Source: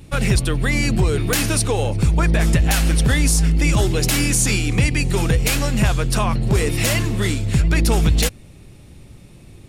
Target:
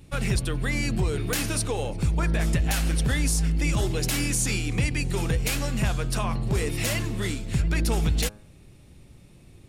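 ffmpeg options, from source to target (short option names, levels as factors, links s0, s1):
-af "bandreject=f=104.6:t=h:w=4,bandreject=f=209.2:t=h:w=4,bandreject=f=313.8:t=h:w=4,bandreject=f=418.4:t=h:w=4,bandreject=f=523:t=h:w=4,bandreject=f=627.6:t=h:w=4,bandreject=f=732.2:t=h:w=4,bandreject=f=836.8:t=h:w=4,bandreject=f=941.4:t=h:w=4,bandreject=f=1046:t=h:w=4,bandreject=f=1150.6:t=h:w=4,bandreject=f=1255.2:t=h:w=4,bandreject=f=1359.8:t=h:w=4,bandreject=f=1464.4:t=h:w=4,bandreject=f=1569:t=h:w=4,bandreject=f=1673.6:t=h:w=4,volume=0.422"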